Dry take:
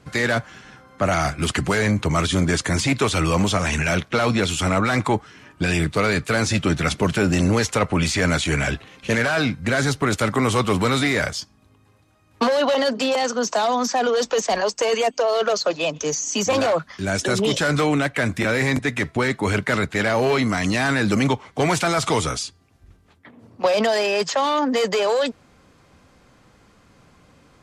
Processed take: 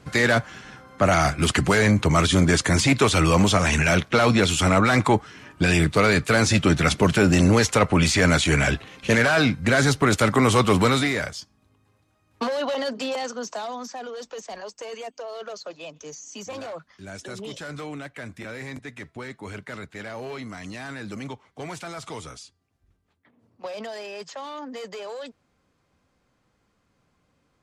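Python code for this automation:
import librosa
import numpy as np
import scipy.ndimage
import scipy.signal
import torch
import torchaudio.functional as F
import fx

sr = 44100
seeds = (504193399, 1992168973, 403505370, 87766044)

y = fx.gain(x, sr, db=fx.line((10.84, 1.5), (11.3, -7.0), (13.14, -7.0), (14.07, -15.5)))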